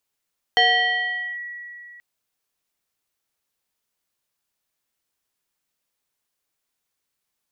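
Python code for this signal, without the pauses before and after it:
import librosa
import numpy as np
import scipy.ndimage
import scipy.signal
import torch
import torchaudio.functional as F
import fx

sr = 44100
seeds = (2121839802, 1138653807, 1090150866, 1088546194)

y = fx.fm2(sr, length_s=1.43, level_db=-12.0, carrier_hz=1930.0, ratio=0.62, index=1.4, index_s=0.81, decay_s=2.84, shape='linear')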